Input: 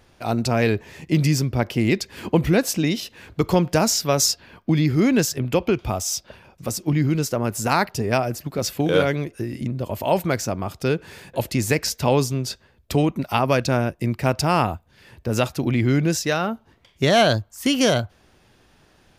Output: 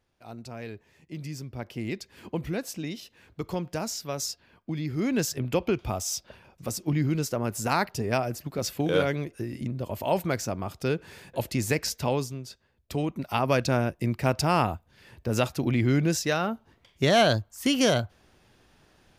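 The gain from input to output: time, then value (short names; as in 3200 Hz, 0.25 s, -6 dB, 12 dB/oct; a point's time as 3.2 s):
1.13 s -19.5 dB
1.78 s -13 dB
4.8 s -13 dB
5.31 s -5.5 dB
11.97 s -5.5 dB
12.49 s -14.5 dB
13.56 s -4 dB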